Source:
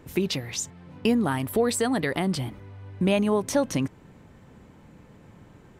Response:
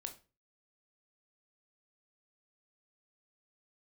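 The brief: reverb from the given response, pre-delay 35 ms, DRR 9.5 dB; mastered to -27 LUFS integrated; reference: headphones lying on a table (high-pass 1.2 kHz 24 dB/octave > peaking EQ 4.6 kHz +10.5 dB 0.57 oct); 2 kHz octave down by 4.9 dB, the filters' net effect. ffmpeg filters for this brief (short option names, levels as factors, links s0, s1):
-filter_complex "[0:a]equalizer=f=2000:t=o:g=-7,asplit=2[s0][s1];[1:a]atrim=start_sample=2205,adelay=35[s2];[s1][s2]afir=irnorm=-1:irlink=0,volume=0.501[s3];[s0][s3]amix=inputs=2:normalize=0,highpass=f=1200:w=0.5412,highpass=f=1200:w=1.3066,equalizer=f=4600:t=o:w=0.57:g=10.5,volume=1.58"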